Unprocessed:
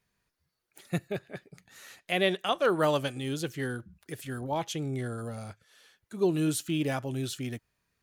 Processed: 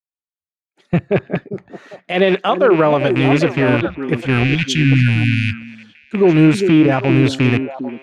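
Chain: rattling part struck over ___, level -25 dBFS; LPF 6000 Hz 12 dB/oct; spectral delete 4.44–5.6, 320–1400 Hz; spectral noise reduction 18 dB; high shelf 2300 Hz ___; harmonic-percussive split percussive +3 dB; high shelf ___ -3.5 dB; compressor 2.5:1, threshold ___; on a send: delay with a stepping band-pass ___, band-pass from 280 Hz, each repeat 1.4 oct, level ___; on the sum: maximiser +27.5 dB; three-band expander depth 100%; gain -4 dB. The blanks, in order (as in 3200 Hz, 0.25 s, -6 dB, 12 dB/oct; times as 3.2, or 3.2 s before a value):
-39 dBFS, -12 dB, 4700 Hz, -34 dBFS, 0.399 s, -3.5 dB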